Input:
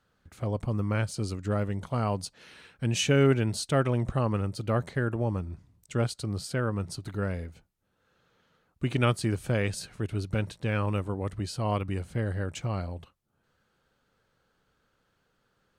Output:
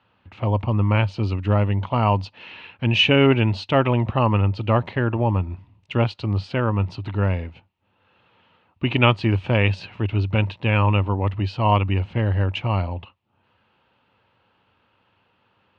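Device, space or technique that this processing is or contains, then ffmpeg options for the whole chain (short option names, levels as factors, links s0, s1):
guitar cabinet: -af "highpass=96,equalizer=f=97:t=q:w=4:g=8,equalizer=f=150:t=q:w=4:g=-7,equalizer=f=440:t=q:w=4:g=-4,equalizer=f=930:t=q:w=4:g=9,equalizer=f=1500:t=q:w=4:g=-5,equalizer=f=2700:t=q:w=4:g=10,lowpass=f=3600:w=0.5412,lowpass=f=3600:w=1.3066,volume=2.51"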